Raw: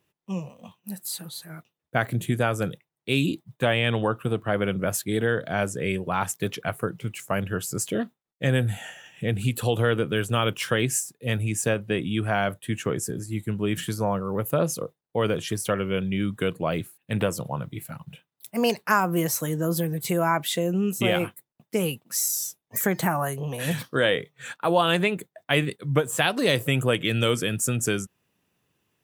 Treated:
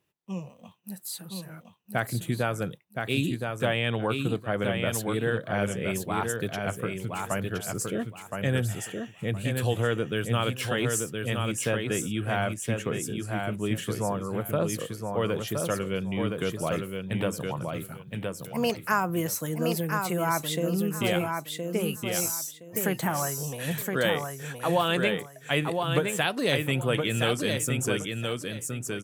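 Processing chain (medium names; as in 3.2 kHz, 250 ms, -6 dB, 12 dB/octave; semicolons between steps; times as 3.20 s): feedback delay 1018 ms, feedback 22%, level -4.5 dB; trim -4 dB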